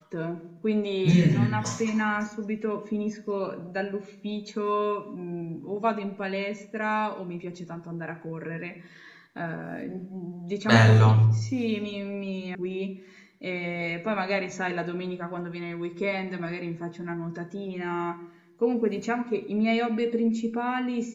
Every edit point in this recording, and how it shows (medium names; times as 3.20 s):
12.55 s: sound stops dead